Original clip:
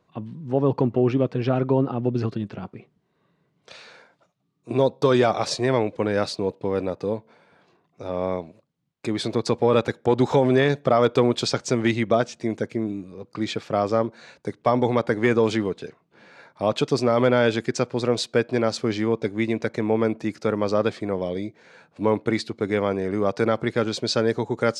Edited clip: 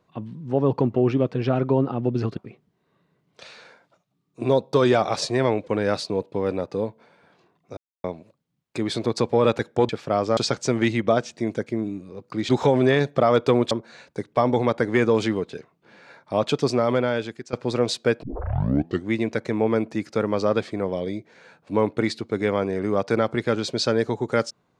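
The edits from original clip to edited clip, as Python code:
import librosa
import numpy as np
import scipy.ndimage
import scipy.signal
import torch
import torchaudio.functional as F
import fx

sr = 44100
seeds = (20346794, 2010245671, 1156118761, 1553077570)

y = fx.edit(x, sr, fx.cut(start_s=2.37, length_s=0.29),
    fx.silence(start_s=8.06, length_s=0.27),
    fx.swap(start_s=10.18, length_s=1.22, other_s=13.52, other_length_s=0.48),
    fx.fade_out_to(start_s=16.99, length_s=0.83, floor_db=-18.0),
    fx.tape_start(start_s=18.52, length_s=0.86), tone=tone)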